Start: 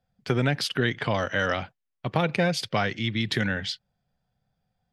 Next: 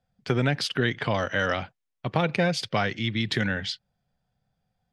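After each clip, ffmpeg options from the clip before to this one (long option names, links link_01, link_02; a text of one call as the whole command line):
ffmpeg -i in.wav -af "lowpass=9200" out.wav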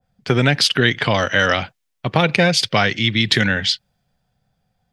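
ffmpeg -i in.wav -af "adynamicequalizer=threshold=0.0126:dfrequency=1800:dqfactor=0.7:tfrequency=1800:tqfactor=0.7:attack=5:release=100:ratio=0.375:range=3:mode=boostabove:tftype=highshelf,volume=7.5dB" out.wav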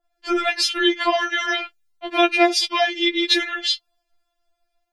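ffmpeg -i in.wav -af "afftfilt=real='re*4*eq(mod(b,16),0)':imag='im*4*eq(mod(b,16),0)':win_size=2048:overlap=0.75" out.wav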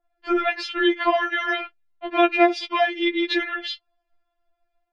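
ffmpeg -i in.wav -af "lowpass=2300" out.wav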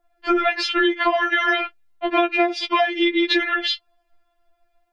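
ffmpeg -i in.wav -af "acompressor=threshold=-23dB:ratio=12,volume=8dB" out.wav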